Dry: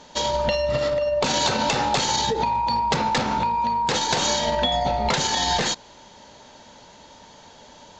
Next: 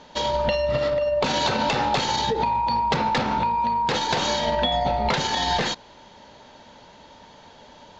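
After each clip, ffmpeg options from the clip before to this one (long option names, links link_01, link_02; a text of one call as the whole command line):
ffmpeg -i in.wav -af "lowpass=4300" out.wav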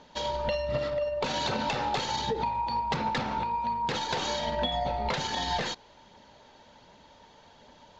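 ffmpeg -i in.wav -af "aphaser=in_gain=1:out_gain=1:delay=2.7:decay=0.24:speed=1.3:type=triangular,volume=-7.5dB" out.wav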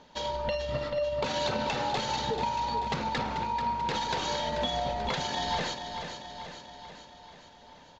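ffmpeg -i in.wav -af "aecho=1:1:437|874|1311|1748|2185|2622|3059:0.398|0.231|0.134|0.0777|0.0451|0.0261|0.0152,volume=-1.5dB" out.wav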